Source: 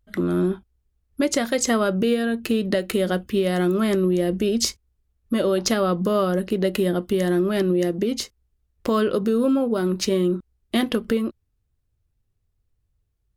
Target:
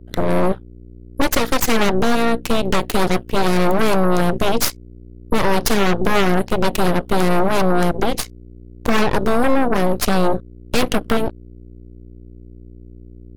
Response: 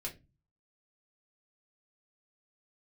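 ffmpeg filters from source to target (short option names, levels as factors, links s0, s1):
-af "aeval=exprs='val(0)+0.0158*(sin(2*PI*60*n/s)+sin(2*PI*2*60*n/s)/2+sin(2*PI*3*60*n/s)/3+sin(2*PI*4*60*n/s)/4+sin(2*PI*5*60*n/s)/5)':c=same,aeval=exprs='0.422*(cos(1*acos(clip(val(0)/0.422,-1,1)))-cos(1*PI/2))+0.075*(cos(3*acos(clip(val(0)/0.422,-1,1)))-cos(3*PI/2))+0.119*(cos(8*acos(clip(val(0)/0.422,-1,1)))-cos(8*PI/2))':c=same,volume=1.41"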